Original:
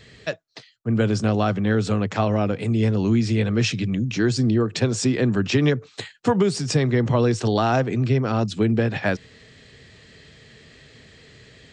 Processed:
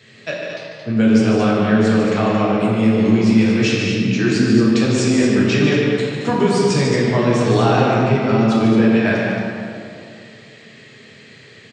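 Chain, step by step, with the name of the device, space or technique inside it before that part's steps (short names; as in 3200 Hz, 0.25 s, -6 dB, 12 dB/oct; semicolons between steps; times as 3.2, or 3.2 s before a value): stadium PA (HPF 130 Hz 24 dB/oct; bell 2400 Hz +3.5 dB 0.47 oct; loudspeakers at several distances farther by 51 m -7 dB, 77 m -8 dB; reverb RT60 2.4 s, pre-delay 3 ms, DRR -5 dB); gain -1.5 dB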